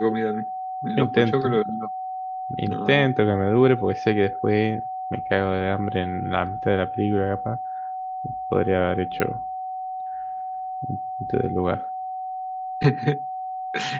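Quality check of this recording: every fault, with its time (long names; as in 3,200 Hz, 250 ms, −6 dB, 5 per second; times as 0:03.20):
whistle 750 Hz −28 dBFS
0:09.20: click −10 dBFS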